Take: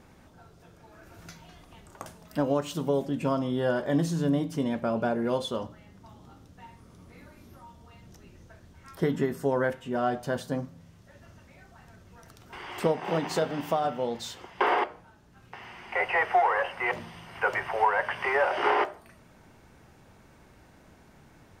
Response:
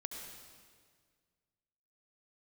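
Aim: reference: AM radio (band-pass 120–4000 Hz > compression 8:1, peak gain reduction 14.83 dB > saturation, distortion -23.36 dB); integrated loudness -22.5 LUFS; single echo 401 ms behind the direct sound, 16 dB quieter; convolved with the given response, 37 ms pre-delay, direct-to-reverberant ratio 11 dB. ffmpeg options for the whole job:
-filter_complex "[0:a]aecho=1:1:401:0.158,asplit=2[s0][s1];[1:a]atrim=start_sample=2205,adelay=37[s2];[s1][s2]afir=irnorm=-1:irlink=0,volume=0.335[s3];[s0][s3]amix=inputs=2:normalize=0,highpass=120,lowpass=4000,acompressor=threshold=0.0224:ratio=8,asoftclip=threshold=0.0596,volume=6.68"

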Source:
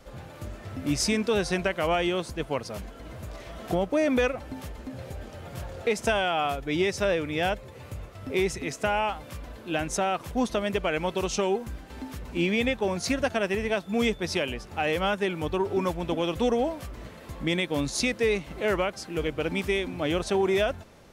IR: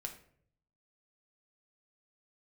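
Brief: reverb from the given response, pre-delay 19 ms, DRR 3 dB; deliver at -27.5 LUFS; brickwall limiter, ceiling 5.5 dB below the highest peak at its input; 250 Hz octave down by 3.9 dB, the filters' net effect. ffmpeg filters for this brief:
-filter_complex "[0:a]equalizer=f=250:t=o:g=-5.5,alimiter=limit=0.112:level=0:latency=1,asplit=2[s0][s1];[1:a]atrim=start_sample=2205,adelay=19[s2];[s1][s2]afir=irnorm=-1:irlink=0,volume=0.944[s3];[s0][s3]amix=inputs=2:normalize=0,volume=1.19"

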